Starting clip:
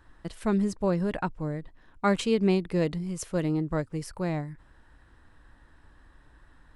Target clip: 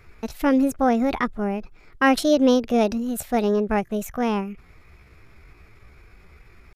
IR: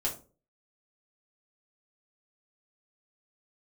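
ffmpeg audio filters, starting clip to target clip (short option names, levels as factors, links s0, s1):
-af "acontrast=65,asetrate=58866,aresample=44100,atempo=0.749154"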